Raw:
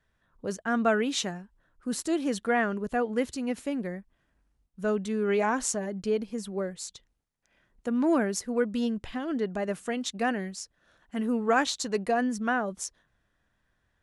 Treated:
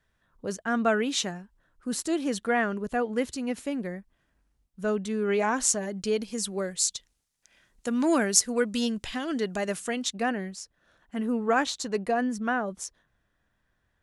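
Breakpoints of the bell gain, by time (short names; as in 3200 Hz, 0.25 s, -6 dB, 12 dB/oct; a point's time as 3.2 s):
bell 7700 Hz 2.9 oct
5.37 s +2.5 dB
6.35 s +14 dB
9.62 s +14 dB
10.08 s +4.5 dB
10.32 s -1.5 dB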